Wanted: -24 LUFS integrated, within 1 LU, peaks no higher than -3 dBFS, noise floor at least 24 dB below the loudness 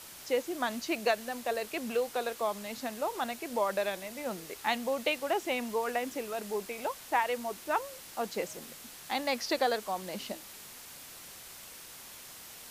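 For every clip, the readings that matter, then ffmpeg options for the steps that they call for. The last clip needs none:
noise floor -49 dBFS; noise floor target -58 dBFS; loudness -33.5 LUFS; peak level -14.0 dBFS; loudness target -24.0 LUFS
-> -af "afftdn=nr=9:nf=-49"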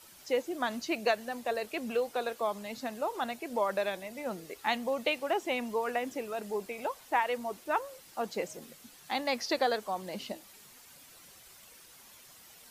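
noise floor -55 dBFS; noise floor target -58 dBFS
-> -af "afftdn=nr=6:nf=-55"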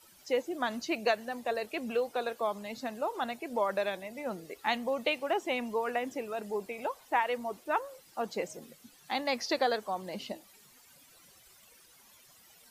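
noise floor -60 dBFS; loudness -33.5 LUFS; peak level -14.5 dBFS; loudness target -24.0 LUFS
-> -af "volume=2.99"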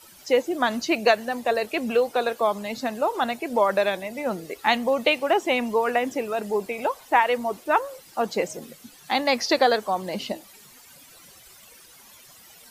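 loudness -24.0 LUFS; peak level -5.0 dBFS; noise floor -50 dBFS

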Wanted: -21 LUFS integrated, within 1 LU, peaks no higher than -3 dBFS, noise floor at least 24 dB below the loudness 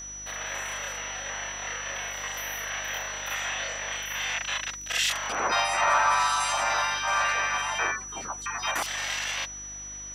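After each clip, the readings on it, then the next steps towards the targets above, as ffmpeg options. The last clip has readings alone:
hum 50 Hz; highest harmonic 350 Hz; hum level -47 dBFS; steady tone 5.9 kHz; tone level -37 dBFS; loudness -27.5 LUFS; peak level -12.0 dBFS; loudness target -21.0 LUFS
-> -af "bandreject=f=50:t=h:w=4,bandreject=f=100:t=h:w=4,bandreject=f=150:t=h:w=4,bandreject=f=200:t=h:w=4,bandreject=f=250:t=h:w=4,bandreject=f=300:t=h:w=4,bandreject=f=350:t=h:w=4"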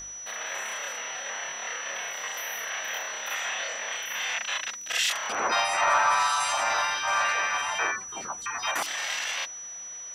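hum not found; steady tone 5.9 kHz; tone level -37 dBFS
-> -af "bandreject=f=5900:w=30"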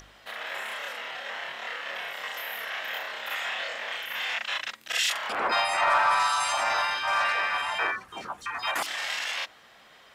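steady tone not found; loudness -28.0 LUFS; peak level -12.5 dBFS; loudness target -21.0 LUFS
-> -af "volume=2.24"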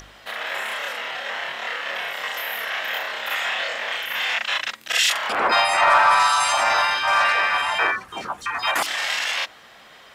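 loudness -21.0 LUFS; peak level -5.5 dBFS; noise floor -48 dBFS

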